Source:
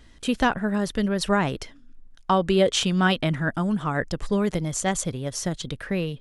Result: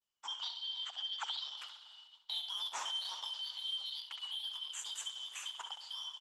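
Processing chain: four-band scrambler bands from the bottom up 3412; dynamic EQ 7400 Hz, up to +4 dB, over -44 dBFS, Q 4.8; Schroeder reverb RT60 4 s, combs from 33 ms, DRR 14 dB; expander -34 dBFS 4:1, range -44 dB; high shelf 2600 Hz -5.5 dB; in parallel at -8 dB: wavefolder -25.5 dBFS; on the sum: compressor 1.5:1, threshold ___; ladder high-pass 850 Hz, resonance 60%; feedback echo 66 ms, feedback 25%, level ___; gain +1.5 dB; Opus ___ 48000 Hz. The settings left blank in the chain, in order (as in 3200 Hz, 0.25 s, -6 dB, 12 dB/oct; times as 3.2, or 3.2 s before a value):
-42 dBFS, -9 dB, 12 kbps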